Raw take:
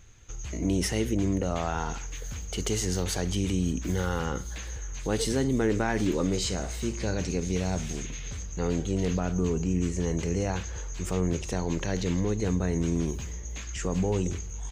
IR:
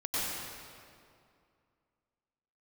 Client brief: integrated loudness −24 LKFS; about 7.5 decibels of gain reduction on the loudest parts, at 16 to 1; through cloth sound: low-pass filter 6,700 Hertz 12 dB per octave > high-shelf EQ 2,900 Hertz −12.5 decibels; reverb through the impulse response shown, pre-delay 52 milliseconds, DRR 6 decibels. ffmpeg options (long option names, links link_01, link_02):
-filter_complex "[0:a]acompressor=threshold=-29dB:ratio=16,asplit=2[link_01][link_02];[1:a]atrim=start_sample=2205,adelay=52[link_03];[link_02][link_03]afir=irnorm=-1:irlink=0,volume=-13.5dB[link_04];[link_01][link_04]amix=inputs=2:normalize=0,lowpass=6700,highshelf=frequency=2900:gain=-12.5,volume=11dB"